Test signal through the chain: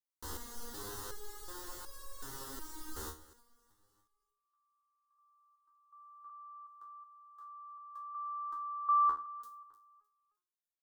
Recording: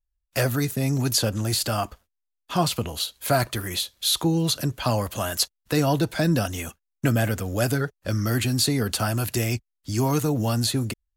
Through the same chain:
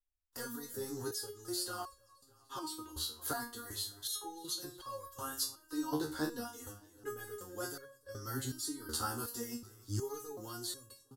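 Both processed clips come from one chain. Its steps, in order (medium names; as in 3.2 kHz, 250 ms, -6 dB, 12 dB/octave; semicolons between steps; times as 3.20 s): static phaser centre 640 Hz, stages 6; de-hum 45.1 Hz, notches 8; on a send: feedback delay 305 ms, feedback 47%, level -20 dB; on the sum: resonator arpeggio 2.7 Hz 77–550 Hz; trim +1 dB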